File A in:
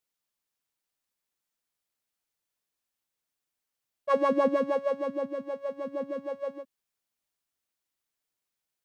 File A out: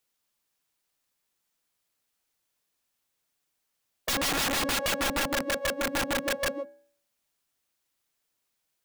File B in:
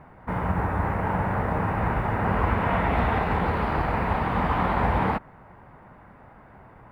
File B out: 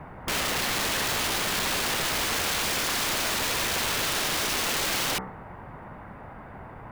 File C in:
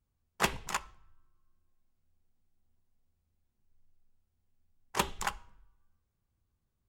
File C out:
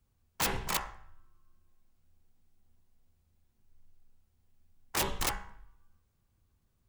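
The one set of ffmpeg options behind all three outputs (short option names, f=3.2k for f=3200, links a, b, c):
-filter_complex "[0:a]acrossover=split=280|750[a][b][c];[a]acompressor=threshold=-34dB:ratio=4[d];[b]acompressor=threshold=-30dB:ratio=4[e];[c]acompressor=threshold=-30dB:ratio=4[f];[d][e][f]amix=inputs=3:normalize=0,bandreject=f=63.73:t=h:w=4,bandreject=f=127.46:t=h:w=4,bandreject=f=191.19:t=h:w=4,bandreject=f=254.92:t=h:w=4,bandreject=f=318.65:t=h:w=4,bandreject=f=382.38:t=h:w=4,bandreject=f=446.11:t=h:w=4,bandreject=f=509.84:t=h:w=4,bandreject=f=573.57:t=h:w=4,bandreject=f=637.3:t=h:w=4,bandreject=f=701.03:t=h:w=4,bandreject=f=764.76:t=h:w=4,bandreject=f=828.49:t=h:w=4,bandreject=f=892.22:t=h:w=4,bandreject=f=955.95:t=h:w=4,bandreject=f=1.01968k:t=h:w=4,bandreject=f=1.08341k:t=h:w=4,bandreject=f=1.14714k:t=h:w=4,bandreject=f=1.21087k:t=h:w=4,bandreject=f=1.2746k:t=h:w=4,bandreject=f=1.33833k:t=h:w=4,bandreject=f=1.40206k:t=h:w=4,bandreject=f=1.46579k:t=h:w=4,bandreject=f=1.52952k:t=h:w=4,bandreject=f=1.59325k:t=h:w=4,bandreject=f=1.65698k:t=h:w=4,bandreject=f=1.72071k:t=h:w=4,bandreject=f=1.78444k:t=h:w=4,bandreject=f=1.84817k:t=h:w=4,bandreject=f=1.9119k:t=h:w=4,bandreject=f=1.97563k:t=h:w=4,bandreject=f=2.03936k:t=h:w=4,bandreject=f=2.10309k:t=h:w=4,bandreject=f=2.16682k:t=h:w=4,bandreject=f=2.23055k:t=h:w=4,aeval=exprs='(mod(29.9*val(0)+1,2)-1)/29.9':c=same,volume=7dB"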